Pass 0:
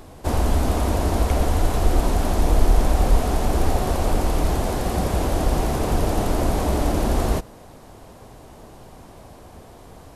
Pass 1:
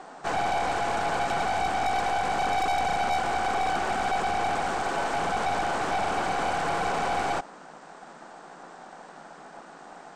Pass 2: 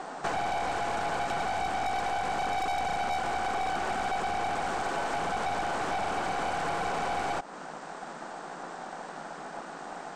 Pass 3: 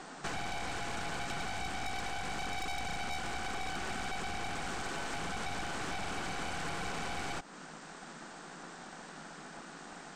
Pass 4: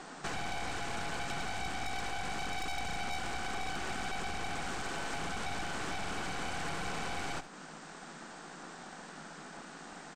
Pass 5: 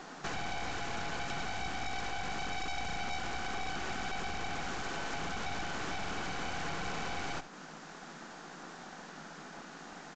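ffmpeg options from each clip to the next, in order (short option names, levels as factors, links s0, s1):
-af "aeval=exprs='val(0)*sin(2*PI*760*n/s)':c=same,afftfilt=real='re*between(b*sr/4096,150,8800)':imag='im*between(b*sr/4096,150,8800)':win_size=4096:overlap=0.75,aeval=exprs='(tanh(20*val(0)+0.45)-tanh(0.45))/20':c=same,volume=1.33"
-af "acompressor=threshold=0.02:ratio=4,volume=1.78"
-af "equalizer=f=700:t=o:w=2:g=-12"
-af "aecho=1:1:71:0.224"
-af "aresample=16000,aresample=44100"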